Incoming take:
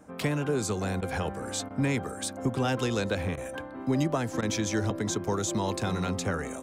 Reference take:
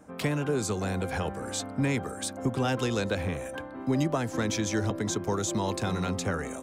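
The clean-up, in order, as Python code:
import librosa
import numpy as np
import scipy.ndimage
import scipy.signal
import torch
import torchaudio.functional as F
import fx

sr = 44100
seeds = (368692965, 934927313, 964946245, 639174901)

y = fx.fix_interpolate(x, sr, at_s=(1.01, 1.69, 3.36, 4.41), length_ms=13.0)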